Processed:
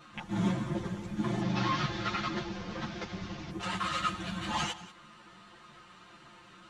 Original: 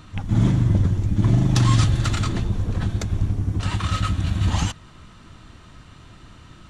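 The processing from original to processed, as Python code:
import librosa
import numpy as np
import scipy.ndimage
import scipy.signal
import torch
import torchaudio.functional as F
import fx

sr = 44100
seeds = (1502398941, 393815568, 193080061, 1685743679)

y = fx.delta_mod(x, sr, bps=32000, step_db=-34.0, at=(1.41, 3.5))
y = fx.highpass(y, sr, hz=630.0, slope=6)
y = fx.high_shelf(y, sr, hz=3800.0, db=-8.5)
y = y + 0.86 * np.pad(y, (int(5.7 * sr / 1000.0), 0))[:len(y)]
y = fx.vibrato(y, sr, rate_hz=6.8, depth_cents=23.0)
y = y + 10.0 ** (-17.0 / 20.0) * np.pad(y, (int(188 * sr / 1000.0), 0))[:len(y)]
y = fx.ensemble(y, sr)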